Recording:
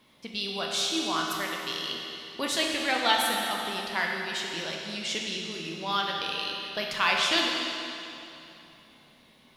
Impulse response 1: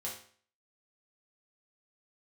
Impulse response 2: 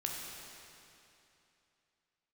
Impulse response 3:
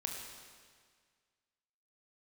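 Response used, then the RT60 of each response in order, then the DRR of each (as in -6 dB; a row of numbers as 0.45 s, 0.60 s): 2; 0.50 s, 2.9 s, 1.8 s; -5.0 dB, -1.5 dB, 0.5 dB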